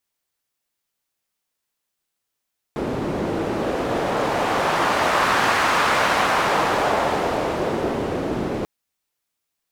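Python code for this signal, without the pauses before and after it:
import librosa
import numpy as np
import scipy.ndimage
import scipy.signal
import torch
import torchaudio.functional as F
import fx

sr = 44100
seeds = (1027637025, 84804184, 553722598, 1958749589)

y = fx.wind(sr, seeds[0], length_s=5.89, low_hz=340.0, high_hz=1200.0, q=1.1, gusts=1, swing_db=6.0)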